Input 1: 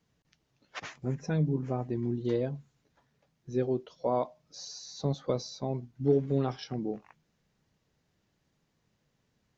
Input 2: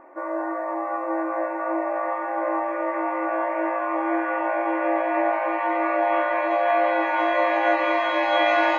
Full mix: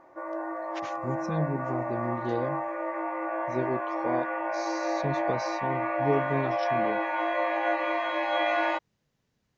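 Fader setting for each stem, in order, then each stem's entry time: -1.5 dB, -6.5 dB; 0.00 s, 0.00 s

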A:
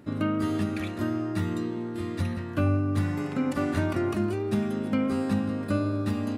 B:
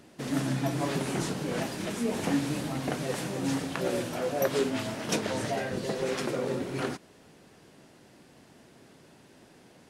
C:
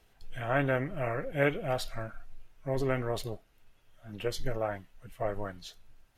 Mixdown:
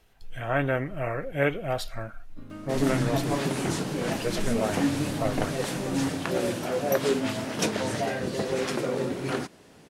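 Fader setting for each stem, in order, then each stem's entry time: -15.0 dB, +2.5 dB, +2.5 dB; 2.30 s, 2.50 s, 0.00 s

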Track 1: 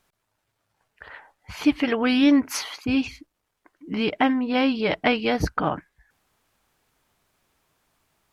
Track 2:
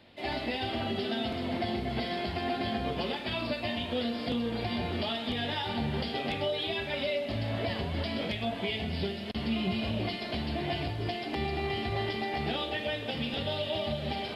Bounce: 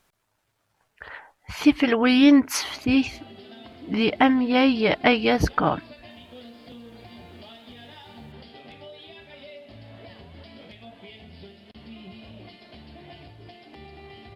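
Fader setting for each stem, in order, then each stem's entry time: +2.5 dB, -12.5 dB; 0.00 s, 2.40 s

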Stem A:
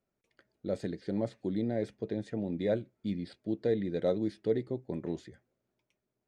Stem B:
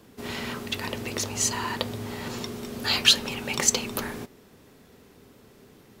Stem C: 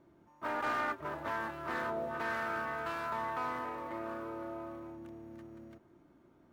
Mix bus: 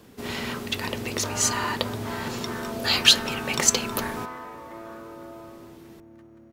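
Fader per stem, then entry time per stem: mute, +2.0 dB, 0.0 dB; mute, 0.00 s, 0.80 s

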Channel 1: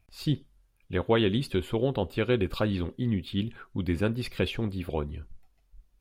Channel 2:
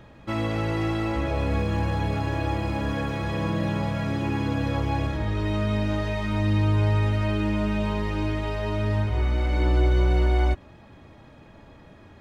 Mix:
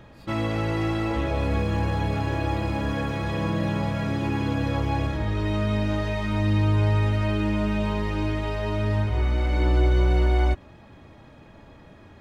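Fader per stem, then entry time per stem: -17.5 dB, +0.5 dB; 0.00 s, 0.00 s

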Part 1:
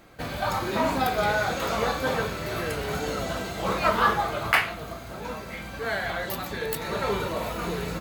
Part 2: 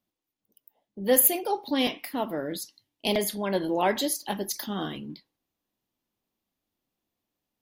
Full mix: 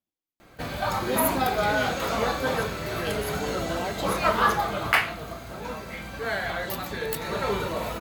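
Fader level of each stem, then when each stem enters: 0.0 dB, -8.5 dB; 0.40 s, 0.00 s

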